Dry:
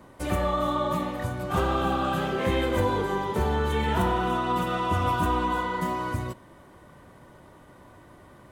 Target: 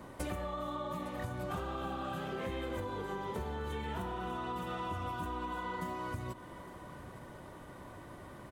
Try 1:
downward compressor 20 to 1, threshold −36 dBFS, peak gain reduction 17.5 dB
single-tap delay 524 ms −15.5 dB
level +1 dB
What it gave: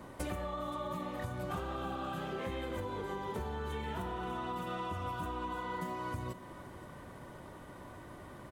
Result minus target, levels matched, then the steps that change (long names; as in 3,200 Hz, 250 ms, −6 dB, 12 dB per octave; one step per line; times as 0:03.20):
echo 335 ms early
change: single-tap delay 859 ms −15.5 dB